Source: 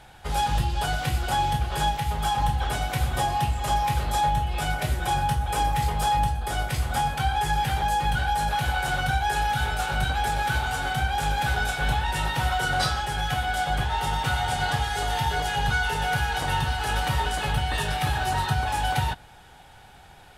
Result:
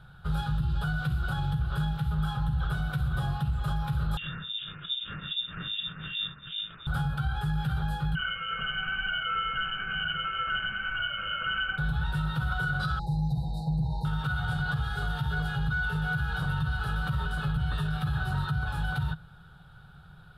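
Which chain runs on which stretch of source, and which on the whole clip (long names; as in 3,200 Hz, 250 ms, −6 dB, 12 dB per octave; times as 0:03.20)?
0:04.17–0:06.87: sample-rate reduction 2,600 Hz, jitter 20% + two-band tremolo in antiphase 2.5 Hz, depth 100%, crossover 1,200 Hz + voice inversion scrambler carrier 3,600 Hz
0:08.15–0:11.78: single-tap delay 90 ms −6.5 dB + voice inversion scrambler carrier 3,000 Hz
0:12.99–0:14.05: linear-phase brick-wall band-stop 1,000–3,700 Hz + high-shelf EQ 10,000 Hz −11 dB + comb filter 6.1 ms, depth 74%
whole clip: drawn EQ curve 100 Hz 0 dB, 160 Hz +10 dB, 250 Hz −11 dB, 450 Hz −9 dB, 870 Hz −15 dB, 1,400 Hz +4 dB, 2,000 Hz −21 dB, 3,800 Hz −6 dB, 6,200 Hz −24 dB, 11,000 Hz −14 dB; brickwall limiter −21 dBFS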